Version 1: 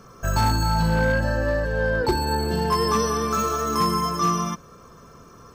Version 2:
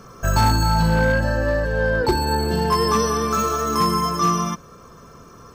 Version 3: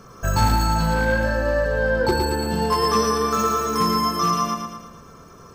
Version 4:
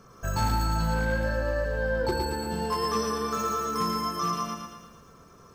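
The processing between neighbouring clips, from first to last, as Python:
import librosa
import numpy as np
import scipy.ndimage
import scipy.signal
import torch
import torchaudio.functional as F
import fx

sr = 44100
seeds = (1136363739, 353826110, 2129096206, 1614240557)

y1 = fx.rider(x, sr, range_db=10, speed_s=2.0)
y1 = y1 * 10.0 ** (2.5 / 20.0)
y2 = fx.echo_feedback(y1, sr, ms=113, feedback_pct=51, wet_db=-5.0)
y2 = y2 * 10.0 ** (-2.0 / 20.0)
y3 = fx.echo_crushed(y2, sr, ms=128, feedback_pct=55, bits=8, wet_db=-12.5)
y3 = y3 * 10.0 ** (-8.0 / 20.0)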